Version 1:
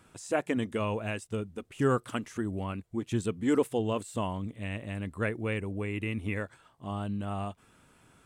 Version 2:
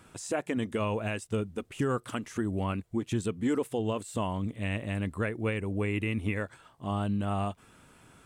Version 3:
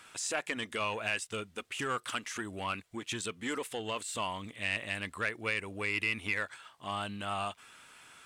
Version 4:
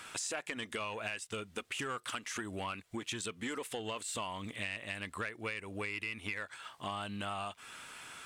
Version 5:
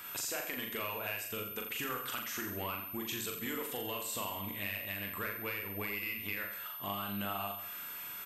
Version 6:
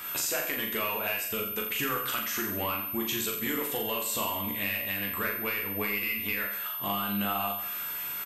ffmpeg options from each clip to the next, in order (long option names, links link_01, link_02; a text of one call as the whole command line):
ffmpeg -i in.wav -af "alimiter=limit=-24dB:level=0:latency=1:release=234,volume=4dB" out.wav
ffmpeg -i in.wav -filter_complex "[0:a]asplit=2[link_01][link_02];[link_02]highpass=frequency=720:poles=1,volume=9dB,asoftclip=type=tanh:threshold=-19.5dB[link_03];[link_01][link_03]amix=inputs=2:normalize=0,lowpass=frequency=2500:poles=1,volume=-6dB,tiltshelf=frequency=1300:gain=-9.5" out.wav
ffmpeg -i in.wav -af "acompressor=threshold=-43dB:ratio=5,volume=6dB" out.wav
ffmpeg -i in.wav -filter_complex "[0:a]aeval=exprs='val(0)+0.00501*sin(2*PI*13000*n/s)':channel_layout=same,asplit=2[link_01][link_02];[link_02]aecho=0:1:40|84|132.4|185.6|244.2:0.631|0.398|0.251|0.158|0.1[link_03];[link_01][link_03]amix=inputs=2:normalize=0,volume=-2dB" out.wav
ffmpeg -i in.wav -filter_complex "[0:a]asplit=2[link_01][link_02];[link_02]adelay=14,volume=-5.5dB[link_03];[link_01][link_03]amix=inputs=2:normalize=0,volume=6dB" out.wav